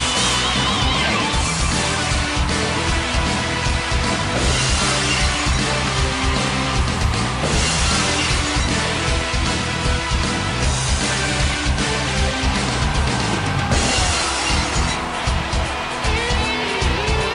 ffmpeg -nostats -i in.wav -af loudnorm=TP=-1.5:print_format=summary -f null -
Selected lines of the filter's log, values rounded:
Input Integrated:    -18.8 LUFS
Input True Peak:      -5.4 dBTP
Input LRA:             1.6 LU
Input Threshold:     -28.8 LUFS